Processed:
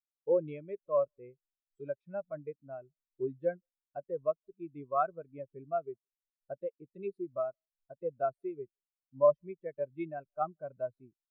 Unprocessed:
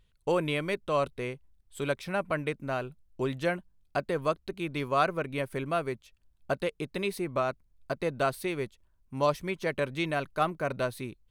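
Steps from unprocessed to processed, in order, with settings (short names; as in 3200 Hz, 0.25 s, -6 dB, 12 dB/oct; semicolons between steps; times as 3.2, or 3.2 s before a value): speakerphone echo 0.17 s, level -26 dB; spectral expander 2.5:1; gain -1 dB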